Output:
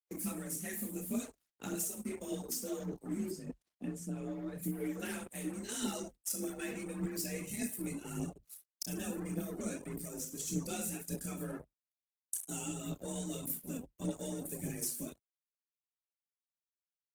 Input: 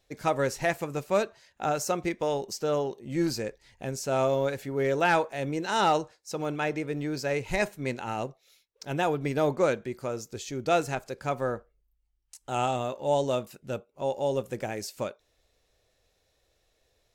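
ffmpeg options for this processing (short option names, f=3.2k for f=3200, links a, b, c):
-filter_complex "[0:a]firequalizer=gain_entry='entry(190,0);entry(470,-18);entry(730,-24);entry(1800,-13);entry(5500,-3);entry(9400,14)':delay=0.05:min_phase=1,acompressor=threshold=-42dB:ratio=10,highpass=120,aecho=1:1:30|63|99.3|139.2|183.2:0.631|0.398|0.251|0.158|0.1,asettb=1/sr,asplit=3[a][b][c];[a]atrim=end=9.964[d];[b]atrim=start=9.96:end=10.47,asetpts=PTS-STARTPTS,afade=t=in:d=0.004:c=qsin,afade=t=out:st=0.506:d=0.004:c=qsin,acrossover=split=470|2100[e][f][g];[e]acompressor=threshold=-49dB:ratio=4[h];[f]acompressor=threshold=-59dB:ratio=4[i];[g]acompressor=threshold=-45dB:ratio=4[j];[h][i][j]amix=inputs=3:normalize=0[k];[c]atrim=start=10.466[l];[d][k]acrossfade=d=0.004:c1=hsin:c2=qsin[m];[m][l]acrossfade=d=0.004:c1=qsin:c2=hsin,acrusher=bits=7:mix=0:aa=0.5,asettb=1/sr,asplit=3[n][o][p];[n]atrim=end=3.304[q];[o]atrim=start=3.3:end=4.63,asetpts=PTS-STARTPTS,afade=t=in:d=0.004:c=qsin,afade=t=out:st=1.326:d=0.004:c=qsin,aemphasis=mode=reproduction:type=50kf[r];[p]atrim=start=4.626[s];[q][r]acrossfade=d=0.004:c1=hsin:c2=qsin[t];[t][s]acrossfade=d=0.004:c1=qsin:c2=hsin,afreqshift=40,afftdn=nr=16:nf=-57,aphaser=in_gain=1:out_gain=1:delay=4.5:decay=0.54:speed=1.7:type=triangular,bandreject=f=950:w=15,volume=5dB" -ar 48000 -c:a libopus -b:a 16k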